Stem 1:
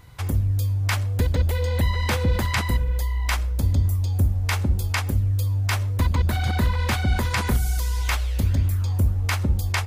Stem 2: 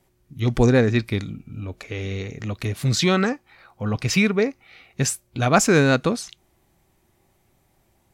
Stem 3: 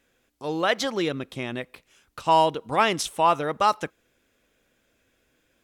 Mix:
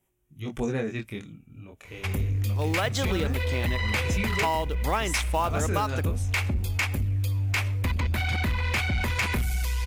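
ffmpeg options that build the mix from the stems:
-filter_complex "[0:a]equalizer=f=2.4k:w=2:g=13,asoftclip=type=tanh:threshold=-16.5dB,adelay=1850,volume=-2dB[a];[1:a]flanger=delay=19:depth=7.4:speed=0.28,aexciter=amount=1.1:drive=3.8:freq=2.4k,volume=-8dB[b];[2:a]acrusher=bits=5:mode=log:mix=0:aa=0.000001,adelay=2150,volume=0dB[c];[a][b][c]amix=inputs=3:normalize=0,acompressor=threshold=-22dB:ratio=6"

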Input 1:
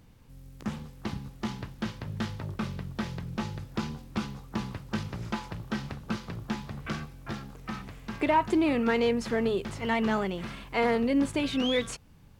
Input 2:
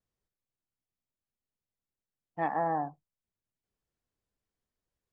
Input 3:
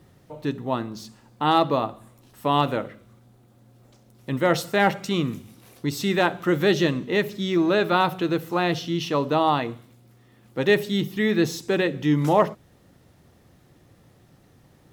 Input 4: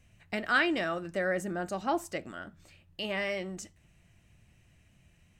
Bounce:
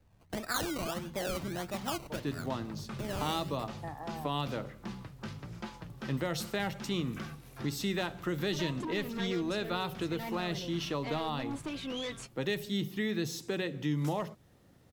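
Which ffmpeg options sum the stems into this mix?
-filter_complex "[0:a]flanger=delay=5.3:depth=2.5:regen=49:speed=1.3:shape=triangular,aeval=exprs='0.168*sin(PI/2*3.16*val(0)/0.168)':c=same,adelay=300,volume=-17dB[a];[1:a]acompressor=threshold=-36dB:ratio=6,adelay=1450,volume=-4.5dB[b];[2:a]adelay=1800,volume=-6.5dB[c];[3:a]acrusher=samples=20:mix=1:aa=0.000001:lfo=1:lforange=12:lforate=1.6,volume=-3dB[d];[a][b][c][d]amix=inputs=4:normalize=0,acrossover=split=160|3000[e][f][g];[f]acompressor=threshold=-32dB:ratio=6[h];[e][h][g]amix=inputs=3:normalize=0"

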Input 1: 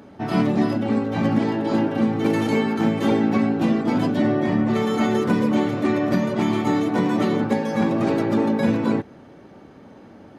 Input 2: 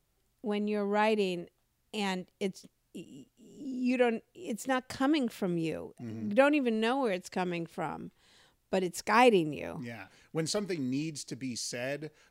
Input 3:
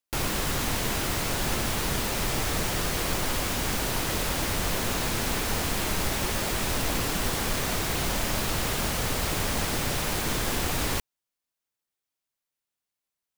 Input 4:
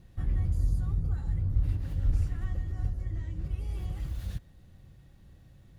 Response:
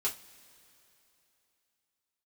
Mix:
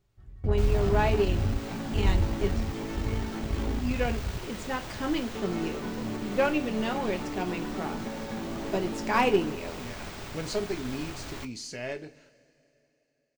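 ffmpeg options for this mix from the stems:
-filter_complex "[0:a]asoftclip=type=tanh:threshold=-16.5dB,adelay=550,volume=-9.5dB,asplit=3[a][b][c];[a]atrim=end=3.81,asetpts=PTS-STARTPTS,afade=t=out:st=3.806:d=0.004:c=hsin[d];[b]atrim=start=3.81:end=5.35,asetpts=PTS-STARTPTS,volume=0[e];[c]atrim=start=5.35,asetpts=PTS-STARTPTS,afade=t=in:d=0.004:c=hsin[f];[d][e][f]concat=n=3:v=0:a=1[g];[1:a]volume=-4.5dB,asplit=3[h][i][j];[i]volume=-4dB[k];[2:a]adelay=450,volume=-14dB,asplit=2[l][m];[m]volume=-9dB[n];[3:a]volume=1.5dB,asplit=2[o][p];[p]volume=-23.5dB[q];[j]apad=whole_len=255055[r];[o][r]sidechaingate=range=-33dB:threshold=-59dB:ratio=16:detection=peak[s];[g][l]amix=inputs=2:normalize=0,alimiter=level_in=3.5dB:limit=-24dB:level=0:latency=1:release=299,volume=-3.5dB,volume=0dB[t];[4:a]atrim=start_sample=2205[u];[k][n][q]amix=inputs=3:normalize=0[v];[v][u]afir=irnorm=-1:irlink=0[w];[h][s][t][w]amix=inputs=4:normalize=0,equalizer=f=12k:w=0.94:g=-14,aeval=exprs='0.211*(cos(1*acos(clip(val(0)/0.211,-1,1)))-cos(1*PI/2))+0.0106*(cos(6*acos(clip(val(0)/0.211,-1,1)))-cos(6*PI/2))':c=same"

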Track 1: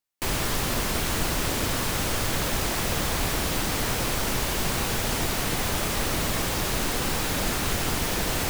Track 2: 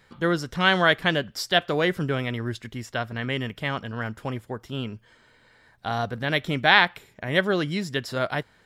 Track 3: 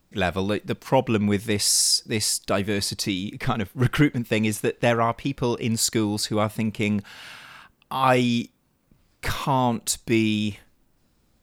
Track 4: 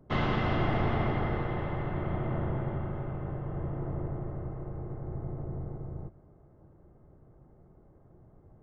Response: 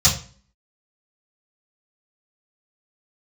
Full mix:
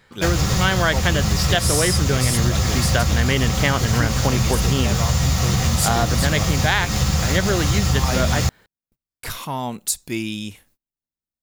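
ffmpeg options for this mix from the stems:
-filter_complex "[0:a]volume=-8.5dB,asplit=2[a][b];[b]volume=-5.5dB[c];[1:a]dynaudnorm=f=460:g=3:m=11dB,volume=3dB[d];[2:a]agate=range=-29dB:threshold=-53dB:ratio=16:detection=peak,crystalizer=i=2:c=0,volume=-5.5dB[e];[4:a]atrim=start_sample=2205[f];[c][f]afir=irnorm=-1:irlink=0[g];[a][d][e][g]amix=inputs=4:normalize=0,acompressor=threshold=-14dB:ratio=6"

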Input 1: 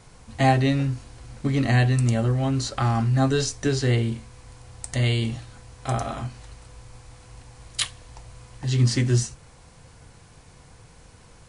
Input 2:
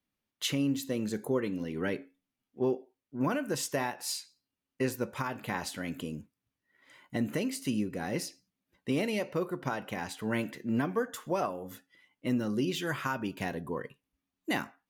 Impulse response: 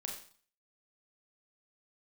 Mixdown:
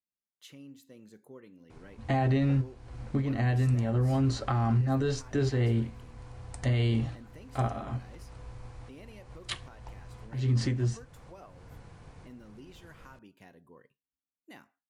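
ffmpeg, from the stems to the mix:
-filter_complex "[0:a]lowpass=f=1.6k:p=1,adelay=1700,volume=0.5dB[a];[1:a]volume=-20dB,asplit=2[b][c];[c]apad=whole_len=581549[d];[a][d]sidechaincompress=threshold=-54dB:ratio=6:attack=21:release=315[e];[e][b]amix=inputs=2:normalize=0,alimiter=limit=-19dB:level=0:latency=1:release=50"

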